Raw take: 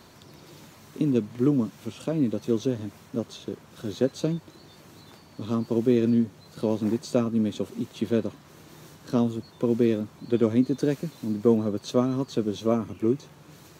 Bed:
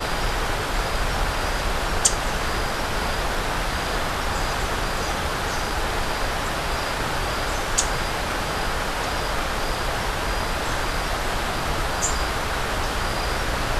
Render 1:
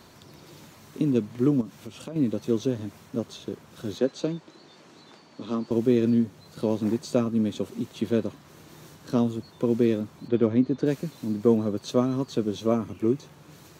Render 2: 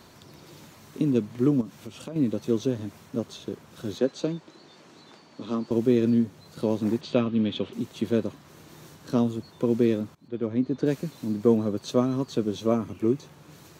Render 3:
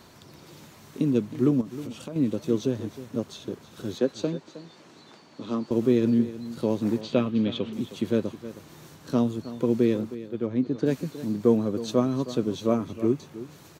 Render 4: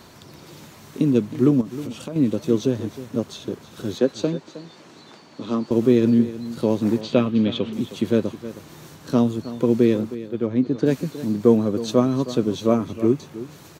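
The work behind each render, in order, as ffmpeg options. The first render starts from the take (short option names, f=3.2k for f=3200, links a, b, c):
-filter_complex "[0:a]asettb=1/sr,asplit=3[a][b][c];[a]atrim=end=1.614[d];[b]atrim=start=1.61:end=2.16,asetpts=PTS-STARTPTS,afade=t=in:d=0.004:c=qsin,afade=t=out:st=0.546:d=0.004:c=qsin,acompressor=threshold=-35dB:ratio=3:attack=3.2:release=140:knee=1:detection=peak[e];[c]atrim=start=2.156[f];[d][e]acrossfade=d=0.004:c1=hsin:c2=qsin[g];[g][f]acrossfade=d=0.004:c1=qsin:c2=hsin,asettb=1/sr,asplit=3[h][i][j];[h]atrim=end=3.984[k];[i]atrim=start=3.98:end=5.71,asetpts=PTS-STARTPTS,afade=t=in:d=0.004:c=qsin,afade=t=out:st=1.726:d=0.004:c=qsin,acrossover=split=170 7800:gain=0.126 1 0.1[l][m][n];[l][m][n]amix=inputs=3:normalize=0[o];[j]atrim=start=5.706[p];[k][o]acrossfade=d=0.004:c1=hsin:c2=qsin[q];[q][p]acrossfade=d=0.004:c1=qsin:c2=hsin,asplit=3[r][s][t];[r]afade=t=out:st=10.27:d=0.02[u];[s]adynamicsmooth=sensitivity=1.5:basefreq=3.8k,afade=t=in:st=10.27:d=0.02,afade=t=out:st=10.85:d=0.02[v];[t]afade=t=in:st=10.85:d=0.02[w];[u][v][w]amix=inputs=3:normalize=0"
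-filter_complex "[0:a]asettb=1/sr,asplit=3[a][b][c];[a]atrim=end=7.014[d];[b]atrim=start=7.01:end=7.73,asetpts=PTS-STARTPTS,afade=t=in:d=0.004:c=qsin,afade=t=out:st=0.716:d=0.004:c=qsin,lowpass=f=3.2k:t=q:w=3.1[e];[c]atrim=start=7.726[f];[d][e]acrossfade=d=0.004:c1=hsin:c2=qsin[g];[g][f]acrossfade=d=0.004:c1=qsin:c2=hsin,asplit=2[h][i];[h]atrim=end=10.15,asetpts=PTS-STARTPTS,afade=t=out:st=10.146:d=0.004:c=hsin:silence=0.0794328[j];[i]atrim=start=10.15,asetpts=PTS-STARTPTS,afade=t=in:d=0.7:silence=0.0794328[k];[j][k]concat=n=2:v=0:a=1"
-af "aecho=1:1:315:0.188"
-af "volume=5dB"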